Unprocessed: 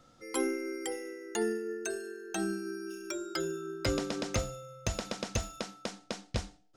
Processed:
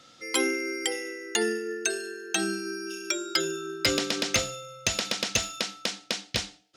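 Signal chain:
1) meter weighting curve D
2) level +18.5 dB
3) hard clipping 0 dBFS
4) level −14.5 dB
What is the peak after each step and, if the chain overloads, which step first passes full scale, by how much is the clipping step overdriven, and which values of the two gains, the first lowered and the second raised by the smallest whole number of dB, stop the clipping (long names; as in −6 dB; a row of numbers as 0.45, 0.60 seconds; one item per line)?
−9.0, +9.5, 0.0, −14.5 dBFS
step 2, 9.5 dB
step 2 +8.5 dB, step 4 −4.5 dB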